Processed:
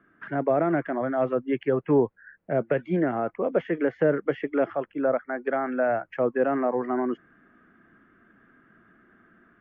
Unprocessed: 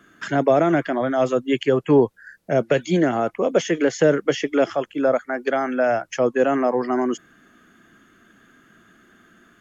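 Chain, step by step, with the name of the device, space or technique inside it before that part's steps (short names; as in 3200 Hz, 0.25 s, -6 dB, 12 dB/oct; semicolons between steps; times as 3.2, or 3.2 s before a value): action camera in a waterproof case (LPF 2100 Hz 24 dB/oct; AGC gain up to 4 dB; gain -8 dB; AAC 96 kbps 32000 Hz)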